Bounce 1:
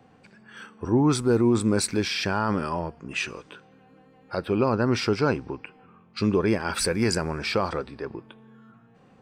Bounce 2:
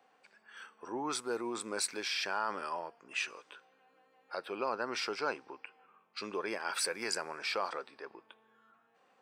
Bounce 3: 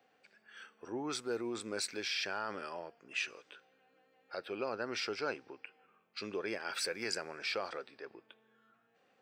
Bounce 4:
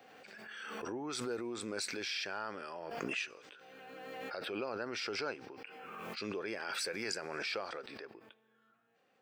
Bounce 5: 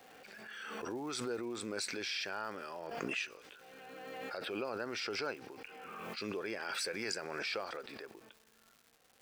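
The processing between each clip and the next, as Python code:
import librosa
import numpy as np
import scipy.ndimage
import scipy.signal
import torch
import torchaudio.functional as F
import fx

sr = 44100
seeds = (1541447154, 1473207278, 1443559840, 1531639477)

y1 = scipy.signal.sosfilt(scipy.signal.butter(2, 620.0, 'highpass', fs=sr, output='sos'), x)
y1 = F.gain(torch.from_numpy(y1), -6.5).numpy()
y2 = fx.graphic_eq_15(y1, sr, hz=(100, 1000, 10000), db=(8, -10, -10))
y3 = fx.pre_swell(y2, sr, db_per_s=23.0)
y3 = F.gain(torch.from_numpy(y3), -2.5).numpy()
y4 = fx.dmg_crackle(y3, sr, seeds[0], per_s=420.0, level_db=-51.0)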